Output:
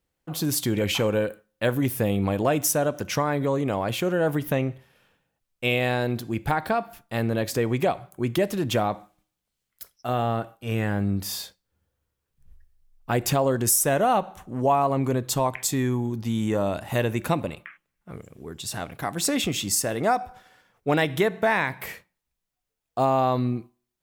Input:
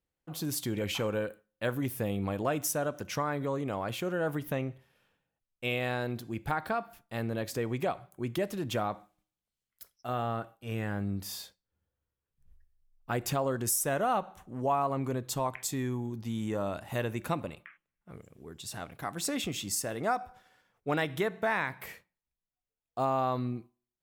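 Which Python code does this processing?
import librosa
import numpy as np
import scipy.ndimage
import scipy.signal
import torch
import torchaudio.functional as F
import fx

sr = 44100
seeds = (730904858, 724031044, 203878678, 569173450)

y = fx.dynamic_eq(x, sr, hz=1300.0, q=2.5, threshold_db=-45.0, ratio=4.0, max_db=-5)
y = y * librosa.db_to_amplitude(8.5)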